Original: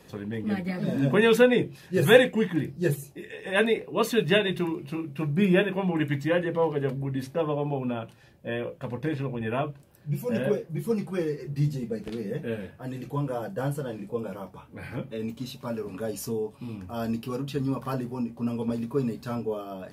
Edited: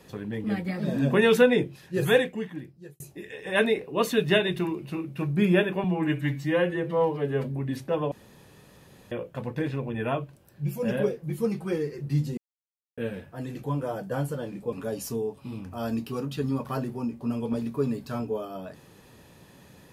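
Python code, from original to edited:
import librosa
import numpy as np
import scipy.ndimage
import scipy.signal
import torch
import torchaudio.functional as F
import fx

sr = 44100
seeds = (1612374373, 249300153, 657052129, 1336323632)

y = fx.edit(x, sr, fx.fade_out_span(start_s=1.58, length_s=1.42),
    fx.stretch_span(start_s=5.84, length_s=1.07, factor=1.5),
    fx.room_tone_fill(start_s=7.58, length_s=1.0),
    fx.silence(start_s=11.84, length_s=0.6),
    fx.cut(start_s=14.19, length_s=1.7), tone=tone)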